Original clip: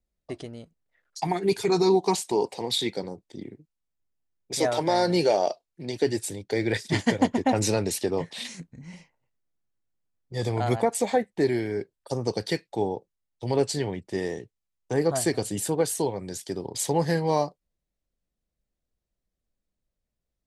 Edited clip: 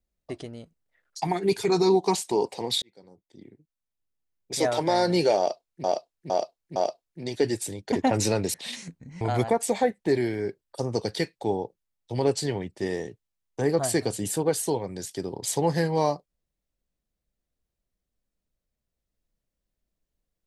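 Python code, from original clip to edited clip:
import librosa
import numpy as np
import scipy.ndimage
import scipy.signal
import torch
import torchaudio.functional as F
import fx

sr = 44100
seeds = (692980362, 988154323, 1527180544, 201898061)

y = fx.edit(x, sr, fx.fade_in_span(start_s=2.82, length_s=1.83),
    fx.repeat(start_s=5.38, length_s=0.46, count=4),
    fx.cut(start_s=6.54, length_s=0.8),
    fx.cut(start_s=7.96, length_s=0.3),
    fx.cut(start_s=8.93, length_s=1.6), tone=tone)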